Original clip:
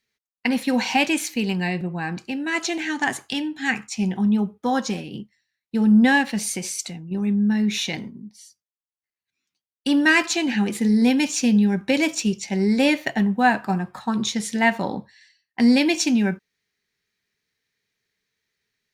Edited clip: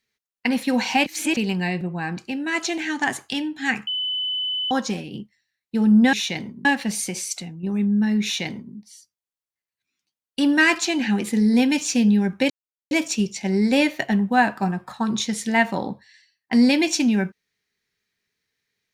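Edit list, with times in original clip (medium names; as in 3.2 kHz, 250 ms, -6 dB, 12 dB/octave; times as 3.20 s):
1.06–1.37 s: reverse
3.87–4.71 s: bleep 3.01 kHz -22.5 dBFS
7.71–8.23 s: copy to 6.13 s
11.98 s: insert silence 0.41 s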